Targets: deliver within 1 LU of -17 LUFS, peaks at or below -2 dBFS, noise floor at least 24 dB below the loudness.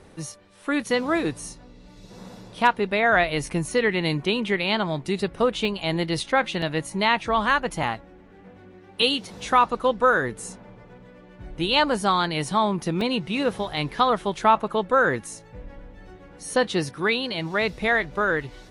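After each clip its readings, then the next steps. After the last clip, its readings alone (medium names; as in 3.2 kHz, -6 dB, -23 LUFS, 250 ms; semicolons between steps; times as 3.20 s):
dropouts 4; longest dropout 1.9 ms; loudness -23.5 LUFS; peak level -5.5 dBFS; loudness target -17.0 LUFS
-> interpolate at 5.65/6.62/13.01/13.77 s, 1.9 ms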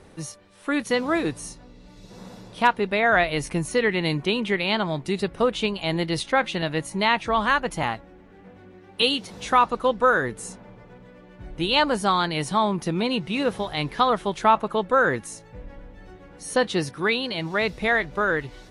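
dropouts 0; loudness -23.5 LUFS; peak level -5.5 dBFS; loudness target -17.0 LUFS
-> trim +6.5 dB; peak limiter -2 dBFS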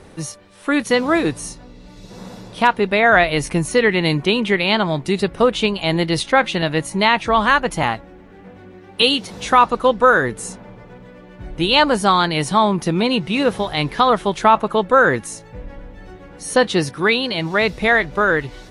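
loudness -17.0 LUFS; peak level -2.0 dBFS; noise floor -43 dBFS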